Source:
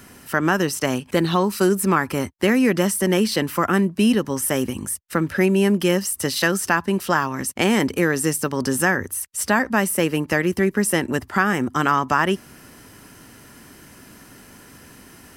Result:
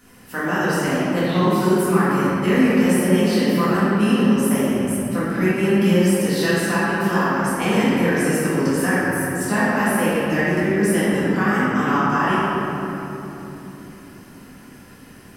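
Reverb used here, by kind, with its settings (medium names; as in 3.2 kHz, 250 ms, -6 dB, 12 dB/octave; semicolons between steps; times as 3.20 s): simulated room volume 210 m³, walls hard, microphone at 1.9 m; trim -11.5 dB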